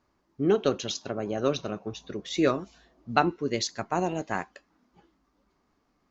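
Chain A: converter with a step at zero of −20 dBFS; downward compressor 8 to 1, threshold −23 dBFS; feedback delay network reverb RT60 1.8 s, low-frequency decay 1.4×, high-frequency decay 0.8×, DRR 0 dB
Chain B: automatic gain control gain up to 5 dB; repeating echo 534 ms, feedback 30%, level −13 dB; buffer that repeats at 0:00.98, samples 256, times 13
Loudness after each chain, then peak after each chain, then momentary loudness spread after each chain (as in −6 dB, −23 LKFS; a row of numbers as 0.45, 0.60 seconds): −21.5, −25.0 LKFS; −7.5, −2.5 dBFS; 2, 14 LU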